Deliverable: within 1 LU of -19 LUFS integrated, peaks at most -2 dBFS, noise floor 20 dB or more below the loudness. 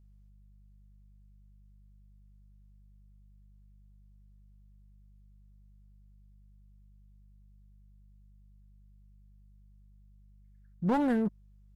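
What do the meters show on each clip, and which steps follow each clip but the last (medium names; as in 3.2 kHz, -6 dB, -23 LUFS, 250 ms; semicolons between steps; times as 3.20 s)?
clipped samples 0.3%; clipping level -23.0 dBFS; hum 50 Hz; highest harmonic 200 Hz; hum level -55 dBFS; loudness -30.0 LUFS; peak level -23.0 dBFS; loudness target -19.0 LUFS
-> clip repair -23 dBFS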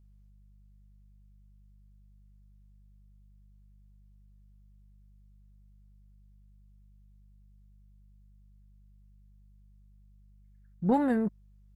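clipped samples 0.0%; hum 50 Hz; highest harmonic 200 Hz; hum level -55 dBFS
-> de-hum 50 Hz, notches 4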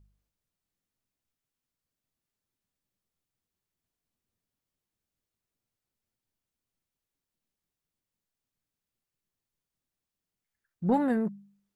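hum not found; loudness -29.0 LUFS; peak level -15.0 dBFS; loudness target -19.0 LUFS
-> trim +10 dB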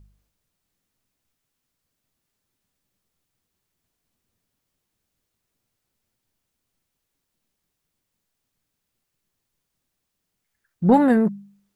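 loudness -19.0 LUFS; peak level -5.0 dBFS; noise floor -80 dBFS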